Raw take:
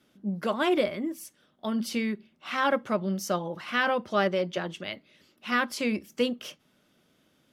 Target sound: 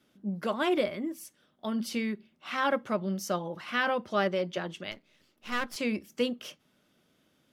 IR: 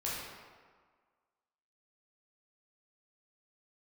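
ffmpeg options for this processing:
-filter_complex "[0:a]asettb=1/sr,asplit=3[s0][s1][s2];[s0]atrim=end=4.914[s3];[s1]atrim=start=4.91:end=5.76,asetpts=PTS-STARTPTS,afade=t=in:d=0.004:c=qsin,afade=t=out:st=0.846:d=0.004:c=qsin,aeval=exprs='if(lt(val(0),0),0.251*val(0),val(0))':c=same[s4];[s2]atrim=start=5.756[s5];[s3][s4]acrossfade=d=0.004:c1=hsin:c2=qsin[s6];[s6][s5]acrossfade=d=0.004:c1=qsin:c2=hsin,volume=0.75"

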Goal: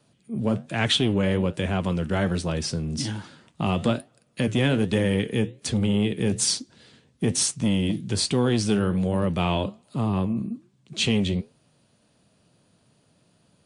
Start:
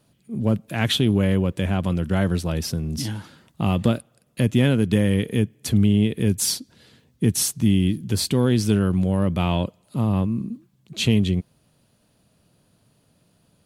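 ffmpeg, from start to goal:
-filter_complex "[0:a]flanger=delay=6.8:depth=8.1:regen=-74:speed=1.2:shape=triangular,acrossover=split=350[s0][s1];[s0]asoftclip=type=tanh:threshold=0.075[s2];[s2][s1]amix=inputs=2:normalize=0,lowshelf=f=65:g=-11.5,volume=1.78" -ar 22050 -c:a wmav2 -b:a 128k

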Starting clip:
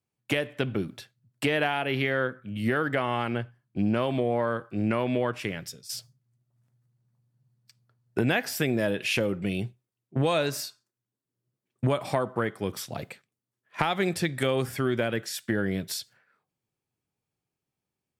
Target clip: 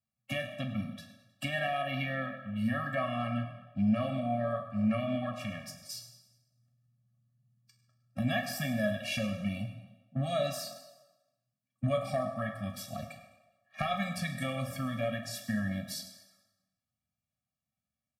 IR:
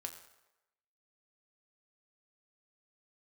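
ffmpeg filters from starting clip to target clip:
-filter_complex "[0:a]asplit=5[s0][s1][s2][s3][s4];[s1]adelay=103,afreqshift=39,volume=0.119[s5];[s2]adelay=206,afreqshift=78,volume=0.0596[s6];[s3]adelay=309,afreqshift=117,volume=0.0299[s7];[s4]adelay=412,afreqshift=156,volume=0.0148[s8];[s0][s5][s6][s7][s8]amix=inputs=5:normalize=0[s9];[1:a]atrim=start_sample=2205,asetrate=37044,aresample=44100[s10];[s9][s10]afir=irnorm=-1:irlink=0,afftfilt=real='re*eq(mod(floor(b*sr/1024/270),2),0)':imag='im*eq(mod(floor(b*sr/1024/270),2),0)':win_size=1024:overlap=0.75,volume=0.891"

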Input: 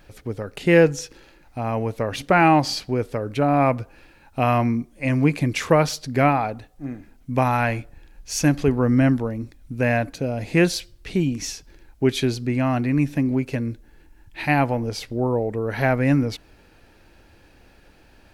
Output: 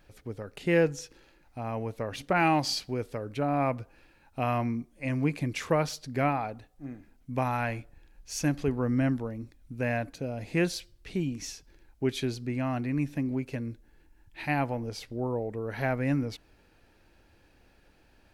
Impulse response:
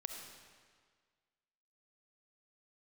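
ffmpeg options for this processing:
-filter_complex "[0:a]asettb=1/sr,asplit=3[s0][s1][s2];[s0]atrim=end=2.334[s3];[s1]atrim=start=2.33:end=3.25,asetpts=PTS-STARTPTS,afade=t=in:d=0.004:c=qsin,afade=t=out:st=0.916:d=0.004:c=qsin,adynamicequalizer=threshold=0.0316:dfrequency=2300:dqfactor=0.7:tfrequency=2300:tqfactor=0.7:attack=5:release=100:ratio=0.375:range=3:mode=boostabove:tftype=highshelf[s4];[s2]atrim=start=3.246[s5];[s3][s4]acrossfade=d=0.004:c1=hsin:c2=qsin[s6];[s6][s5]acrossfade=d=0.004:c1=qsin:c2=hsin,volume=0.355"

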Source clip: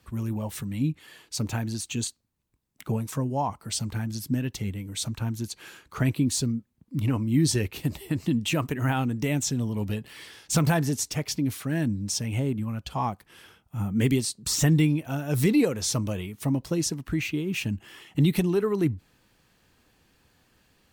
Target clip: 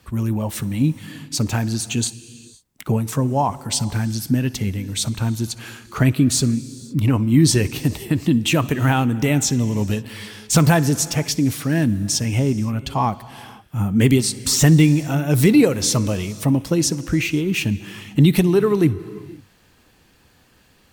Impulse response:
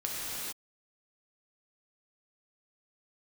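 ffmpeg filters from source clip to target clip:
-filter_complex "[0:a]asplit=2[s0][s1];[1:a]atrim=start_sample=2205,adelay=62[s2];[s1][s2]afir=irnorm=-1:irlink=0,volume=0.075[s3];[s0][s3]amix=inputs=2:normalize=0,volume=2.51"

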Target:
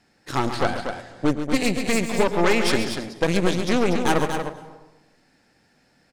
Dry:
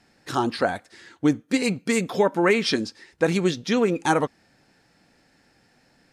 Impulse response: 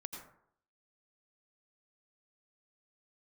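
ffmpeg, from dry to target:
-filter_complex "[0:a]aeval=exprs='0.501*(cos(1*acos(clip(val(0)/0.501,-1,1)))-cos(1*PI/2))+0.0794*(cos(8*acos(clip(val(0)/0.501,-1,1)))-cos(8*PI/2))':c=same,aecho=1:1:137|239.1:0.316|0.447,asplit=2[s0][s1];[1:a]atrim=start_sample=2205,asetrate=28224,aresample=44100,adelay=110[s2];[s1][s2]afir=irnorm=-1:irlink=0,volume=0.2[s3];[s0][s3]amix=inputs=2:normalize=0,volume=0.794"

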